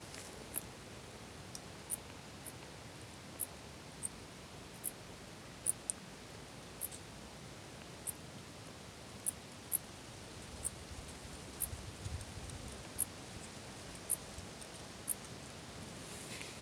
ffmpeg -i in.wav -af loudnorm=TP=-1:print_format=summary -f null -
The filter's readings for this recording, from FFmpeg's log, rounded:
Input Integrated:    -44.6 LUFS
Input True Peak:     -14.4 dBTP
Input LRA:             3.8 LU
Input Threshold:     -54.6 LUFS